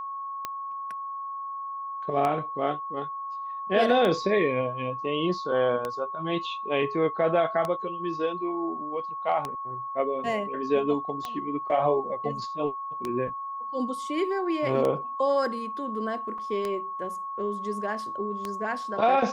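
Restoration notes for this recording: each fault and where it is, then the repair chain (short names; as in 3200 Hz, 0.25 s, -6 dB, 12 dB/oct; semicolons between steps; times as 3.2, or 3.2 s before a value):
tick 33 1/3 rpm -16 dBFS
tone 1100 Hz -32 dBFS
16.38 gap 4.1 ms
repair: de-click; notch 1100 Hz, Q 30; interpolate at 16.38, 4.1 ms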